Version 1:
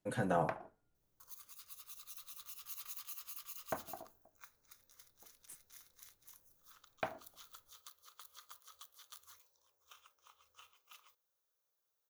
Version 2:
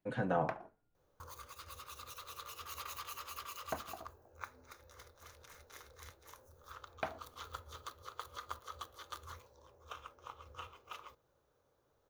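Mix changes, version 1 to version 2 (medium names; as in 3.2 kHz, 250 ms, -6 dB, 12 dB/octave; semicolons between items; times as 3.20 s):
speech: add low-pass 3.6 kHz 12 dB/octave; second sound: remove pre-emphasis filter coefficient 0.97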